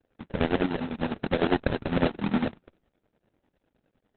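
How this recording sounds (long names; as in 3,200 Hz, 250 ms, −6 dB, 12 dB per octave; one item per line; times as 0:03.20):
a quantiser's noise floor 12 bits, dither triangular
chopped level 9.9 Hz, depth 65%, duty 55%
aliases and images of a low sample rate 1,100 Hz, jitter 20%
Opus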